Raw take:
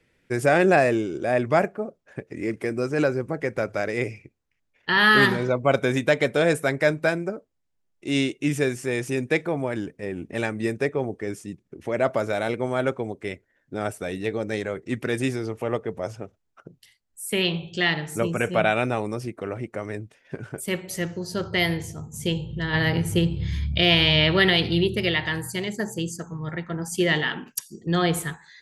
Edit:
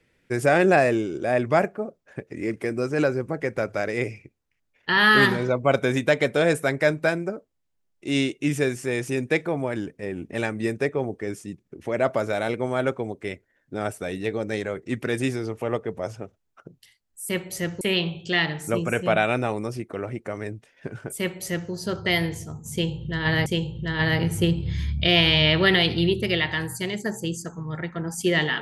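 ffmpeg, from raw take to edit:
ffmpeg -i in.wav -filter_complex "[0:a]asplit=4[link_01][link_02][link_03][link_04];[link_01]atrim=end=17.292[link_05];[link_02]atrim=start=20.668:end=21.192[link_06];[link_03]atrim=start=17.288:end=22.942[link_07];[link_04]atrim=start=22.198[link_08];[link_05][link_06]acrossfade=duration=0.004:curve1=hsin:curve2=hsin[link_09];[link_09][link_07]acrossfade=duration=0.004:curve1=hsin:curve2=hsin[link_10];[link_10][link_08]acrossfade=duration=0.004:curve1=hsin:curve2=hsin" out.wav

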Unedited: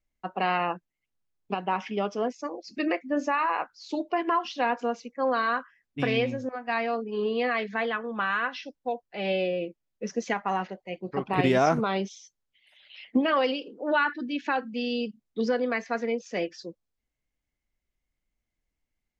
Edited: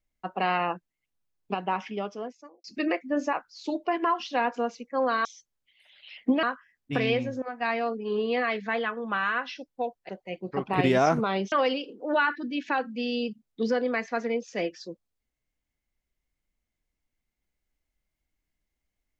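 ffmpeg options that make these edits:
ffmpeg -i in.wav -filter_complex "[0:a]asplit=7[link_01][link_02][link_03][link_04][link_05][link_06][link_07];[link_01]atrim=end=2.64,asetpts=PTS-STARTPTS,afade=type=out:start_time=1.65:duration=0.99[link_08];[link_02]atrim=start=2.64:end=3.332,asetpts=PTS-STARTPTS,afade=type=in:duration=0.004:curve=hsin[link_09];[link_03]atrim=start=3.578:end=5.502[link_10];[link_04]atrim=start=12.118:end=13.302[link_11];[link_05]atrim=start=5.498:end=9.162[link_12];[link_06]atrim=start=10.688:end=12.122[link_13];[link_07]atrim=start=13.298[link_14];[link_08][link_09]concat=n=2:v=0:a=1[link_15];[link_15][link_10]acrossfade=duration=0.004:curve1=hsin:curve2=hsin[link_16];[link_16][link_11]acrossfade=duration=0.004:curve1=hsin:curve2=hsin[link_17];[link_17][link_12]acrossfade=duration=0.004:curve1=hsin:curve2=hsin[link_18];[link_18][link_13]acrossfade=duration=0.004:curve1=hsin:curve2=hsin[link_19];[link_19][link_14]acrossfade=duration=0.004:curve1=hsin:curve2=hsin" out.wav

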